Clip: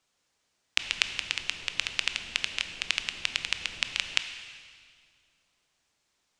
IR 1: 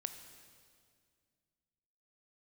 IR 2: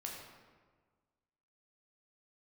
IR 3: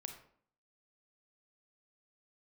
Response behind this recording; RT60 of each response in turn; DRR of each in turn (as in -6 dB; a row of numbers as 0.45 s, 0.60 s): 1; 2.1 s, 1.5 s, 0.55 s; 8.0 dB, -2.0 dB, 5.0 dB